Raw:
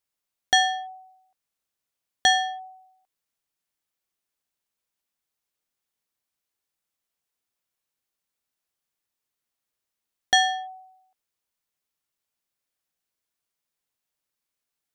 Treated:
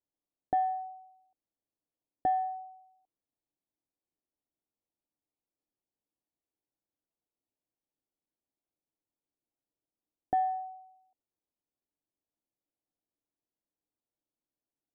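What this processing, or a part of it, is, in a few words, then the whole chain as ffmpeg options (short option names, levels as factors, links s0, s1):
under water: -af "lowpass=f=840:w=0.5412,lowpass=f=840:w=1.3066,equalizer=f=300:t=o:w=0.41:g=9,volume=0.708"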